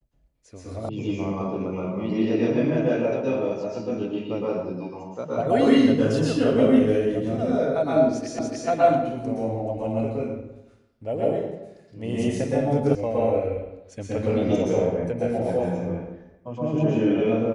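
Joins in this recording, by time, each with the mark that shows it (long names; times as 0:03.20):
0:00.89: cut off before it has died away
0:08.39: the same again, the last 0.29 s
0:12.95: cut off before it has died away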